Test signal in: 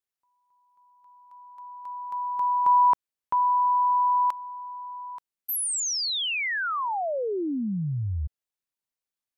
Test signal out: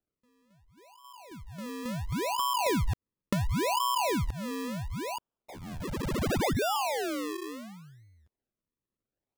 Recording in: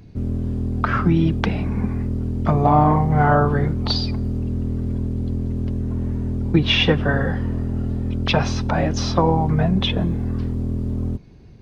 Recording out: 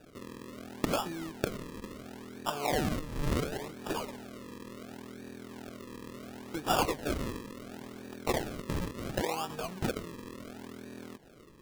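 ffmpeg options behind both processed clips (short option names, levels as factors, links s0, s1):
-af "acompressor=threshold=0.0178:ratio=3:attack=22:release=203:knee=6:detection=peak,highpass=380,lowpass=2200,crystalizer=i=8.5:c=0,acrusher=samples=41:mix=1:aa=0.000001:lfo=1:lforange=41:lforate=0.71"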